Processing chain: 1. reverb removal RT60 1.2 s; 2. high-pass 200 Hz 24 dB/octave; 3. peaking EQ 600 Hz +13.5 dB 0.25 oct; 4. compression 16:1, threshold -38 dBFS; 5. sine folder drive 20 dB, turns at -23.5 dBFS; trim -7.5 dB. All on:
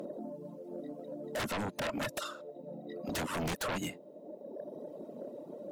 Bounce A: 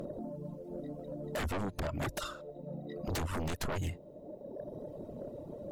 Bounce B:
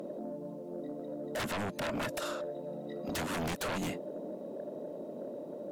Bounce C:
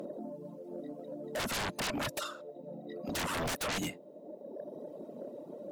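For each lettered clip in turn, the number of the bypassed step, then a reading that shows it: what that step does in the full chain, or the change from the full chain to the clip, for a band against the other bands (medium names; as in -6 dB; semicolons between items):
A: 2, 125 Hz band +8.5 dB; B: 1, crest factor change -2.0 dB; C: 4, mean gain reduction 1.5 dB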